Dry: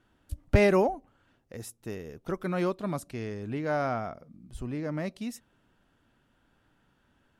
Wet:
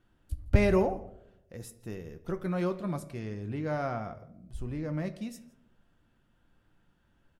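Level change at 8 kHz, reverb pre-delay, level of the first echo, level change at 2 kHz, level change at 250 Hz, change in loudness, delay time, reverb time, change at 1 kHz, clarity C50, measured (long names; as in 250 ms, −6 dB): −4.5 dB, 6 ms, −23.0 dB, −4.5 dB, −1.0 dB, −2.0 dB, 164 ms, 0.75 s, −4.5 dB, 14.5 dB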